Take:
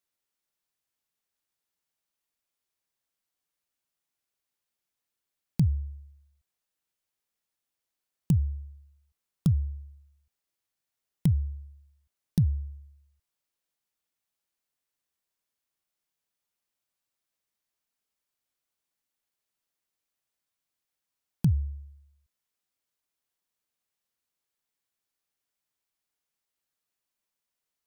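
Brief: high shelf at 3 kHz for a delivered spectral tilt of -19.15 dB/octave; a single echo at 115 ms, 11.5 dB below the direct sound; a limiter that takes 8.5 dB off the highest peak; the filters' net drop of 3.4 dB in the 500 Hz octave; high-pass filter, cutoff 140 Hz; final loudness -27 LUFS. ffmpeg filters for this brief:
-af "highpass=140,equalizer=f=500:t=o:g=-5,highshelf=f=3000:g=6.5,alimiter=limit=0.0631:level=0:latency=1,aecho=1:1:115:0.266,volume=3.76"

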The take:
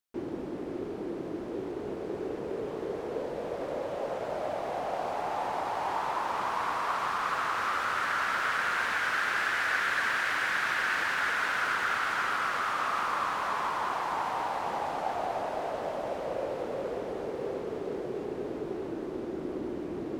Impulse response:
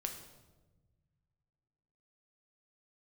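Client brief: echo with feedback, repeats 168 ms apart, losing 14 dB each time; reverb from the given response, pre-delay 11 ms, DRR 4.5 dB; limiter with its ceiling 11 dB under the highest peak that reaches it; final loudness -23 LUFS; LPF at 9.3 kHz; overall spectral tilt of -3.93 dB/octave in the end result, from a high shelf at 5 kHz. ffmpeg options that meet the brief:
-filter_complex "[0:a]lowpass=9300,highshelf=f=5000:g=6,alimiter=level_in=1.19:limit=0.0631:level=0:latency=1,volume=0.841,aecho=1:1:168|336:0.2|0.0399,asplit=2[s0][s1];[1:a]atrim=start_sample=2205,adelay=11[s2];[s1][s2]afir=irnorm=-1:irlink=0,volume=0.631[s3];[s0][s3]amix=inputs=2:normalize=0,volume=3.16"

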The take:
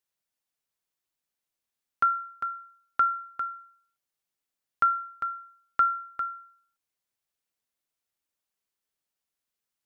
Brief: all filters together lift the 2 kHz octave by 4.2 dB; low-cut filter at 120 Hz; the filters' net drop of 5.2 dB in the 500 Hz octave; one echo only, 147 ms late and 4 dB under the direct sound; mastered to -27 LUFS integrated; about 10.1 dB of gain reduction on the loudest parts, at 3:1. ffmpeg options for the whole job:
-af "highpass=120,equalizer=f=500:t=o:g=-7.5,equalizer=f=2000:t=o:g=9,acompressor=threshold=0.0355:ratio=3,aecho=1:1:147:0.631,volume=2"

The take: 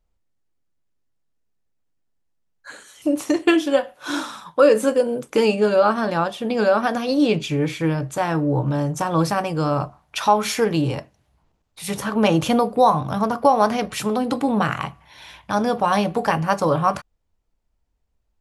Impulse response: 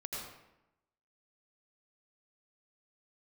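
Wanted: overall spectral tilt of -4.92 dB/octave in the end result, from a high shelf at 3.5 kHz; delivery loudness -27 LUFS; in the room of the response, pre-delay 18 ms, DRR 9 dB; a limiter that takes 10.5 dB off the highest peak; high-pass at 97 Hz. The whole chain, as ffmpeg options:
-filter_complex "[0:a]highpass=97,highshelf=f=3500:g=5.5,alimiter=limit=0.237:level=0:latency=1,asplit=2[s0][s1];[1:a]atrim=start_sample=2205,adelay=18[s2];[s1][s2]afir=irnorm=-1:irlink=0,volume=0.316[s3];[s0][s3]amix=inputs=2:normalize=0,volume=0.596"

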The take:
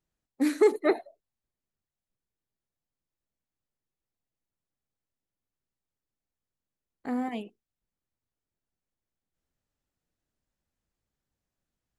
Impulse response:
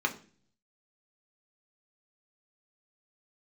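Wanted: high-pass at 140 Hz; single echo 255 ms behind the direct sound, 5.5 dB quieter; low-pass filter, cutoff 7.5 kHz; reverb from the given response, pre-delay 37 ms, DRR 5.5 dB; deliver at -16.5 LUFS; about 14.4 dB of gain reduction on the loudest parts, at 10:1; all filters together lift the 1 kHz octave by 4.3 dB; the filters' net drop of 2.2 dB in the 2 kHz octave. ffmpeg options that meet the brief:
-filter_complex "[0:a]highpass=140,lowpass=7500,equalizer=f=1000:t=o:g=7,equalizer=f=2000:t=o:g=-4.5,acompressor=threshold=0.0316:ratio=10,aecho=1:1:255:0.531,asplit=2[s0][s1];[1:a]atrim=start_sample=2205,adelay=37[s2];[s1][s2]afir=irnorm=-1:irlink=0,volume=0.2[s3];[s0][s3]amix=inputs=2:normalize=0,volume=9.44"

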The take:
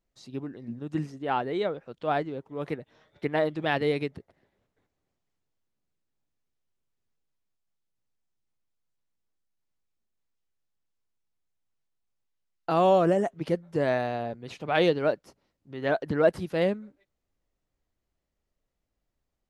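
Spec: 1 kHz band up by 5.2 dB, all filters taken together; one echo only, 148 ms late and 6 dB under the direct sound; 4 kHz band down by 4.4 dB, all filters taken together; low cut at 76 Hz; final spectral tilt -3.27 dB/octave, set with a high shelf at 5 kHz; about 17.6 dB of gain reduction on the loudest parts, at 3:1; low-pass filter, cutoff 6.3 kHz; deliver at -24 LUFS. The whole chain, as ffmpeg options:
-af "highpass=76,lowpass=6300,equalizer=f=1000:t=o:g=8,equalizer=f=4000:t=o:g=-4,highshelf=f=5000:g=-5.5,acompressor=threshold=0.0126:ratio=3,aecho=1:1:148:0.501,volume=5.31"

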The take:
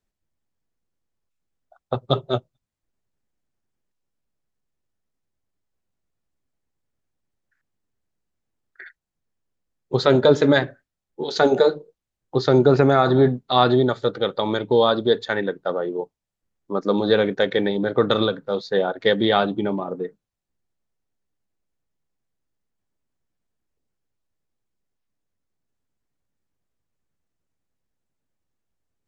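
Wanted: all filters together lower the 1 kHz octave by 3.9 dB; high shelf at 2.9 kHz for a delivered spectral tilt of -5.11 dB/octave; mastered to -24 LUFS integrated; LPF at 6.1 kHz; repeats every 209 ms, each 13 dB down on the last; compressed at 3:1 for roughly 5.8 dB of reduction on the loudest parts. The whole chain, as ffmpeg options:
-af "lowpass=6100,equalizer=f=1000:t=o:g=-5,highshelf=f=2900:g=-5,acompressor=threshold=0.112:ratio=3,aecho=1:1:209|418|627:0.224|0.0493|0.0108,volume=1.12"

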